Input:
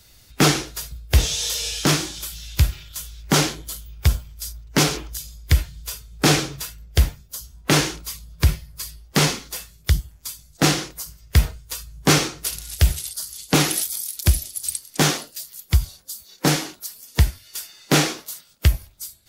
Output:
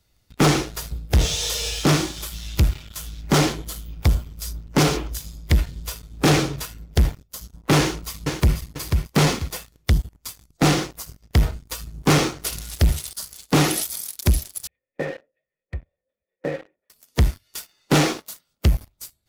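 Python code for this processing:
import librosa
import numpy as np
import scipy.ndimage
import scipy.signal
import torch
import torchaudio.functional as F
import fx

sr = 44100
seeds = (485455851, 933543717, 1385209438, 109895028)

y = fx.echo_throw(x, sr, start_s=7.77, length_s=0.8, ms=490, feedback_pct=30, wet_db=-8.0)
y = fx.formant_cascade(y, sr, vowel='e', at=(14.67, 16.9))
y = fx.high_shelf(y, sr, hz=2200.0, db=-8.5)
y = fx.notch(y, sr, hz=1600.0, q=17.0)
y = fx.leveller(y, sr, passes=3)
y = F.gain(torch.from_numpy(y), -5.0).numpy()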